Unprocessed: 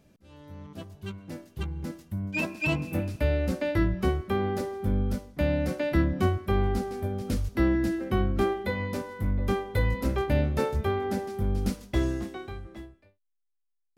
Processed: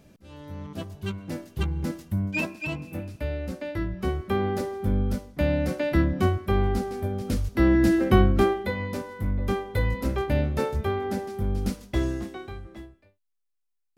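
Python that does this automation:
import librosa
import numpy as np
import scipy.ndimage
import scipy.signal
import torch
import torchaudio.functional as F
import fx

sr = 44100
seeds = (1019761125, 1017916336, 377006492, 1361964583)

y = fx.gain(x, sr, db=fx.line((2.2, 6.0), (2.69, -5.0), (3.87, -5.0), (4.31, 2.0), (7.54, 2.0), (8.02, 10.0), (8.74, 0.5)))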